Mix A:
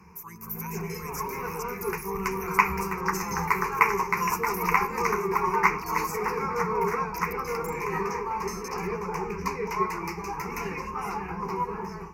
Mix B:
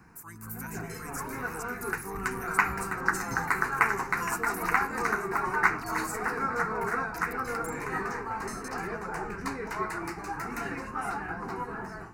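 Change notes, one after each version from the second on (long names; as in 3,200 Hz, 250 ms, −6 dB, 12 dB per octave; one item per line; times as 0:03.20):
master: remove EQ curve with evenly spaced ripples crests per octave 0.8, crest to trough 16 dB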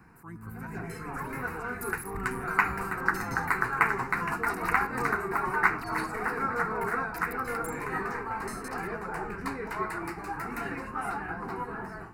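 speech: add spectral tilt −4.5 dB per octave
second sound +3.0 dB
master: add parametric band 6,200 Hz −9.5 dB 0.56 octaves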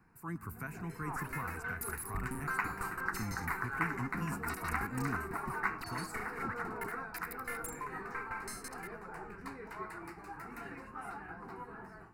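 speech +4.0 dB
first sound −11.0 dB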